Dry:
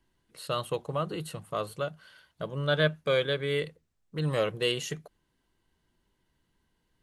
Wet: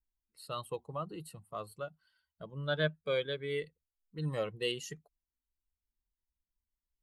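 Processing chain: per-bin expansion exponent 1.5; gain -5 dB

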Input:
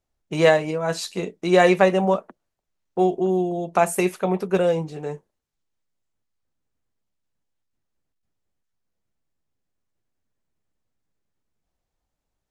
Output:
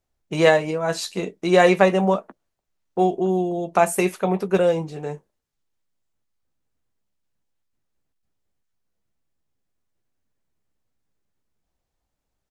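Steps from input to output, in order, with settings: doubler 15 ms -13.5 dB; gain +1 dB

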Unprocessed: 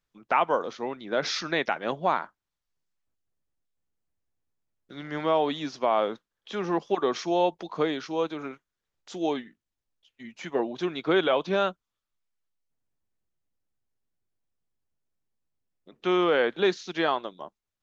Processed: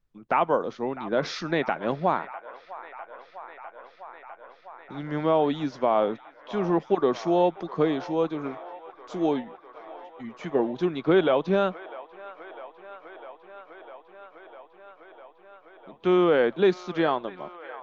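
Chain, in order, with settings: tilt -2.5 dB/oct; on a send: band-limited delay 0.652 s, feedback 82%, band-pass 1300 Hz, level -14.5 dB

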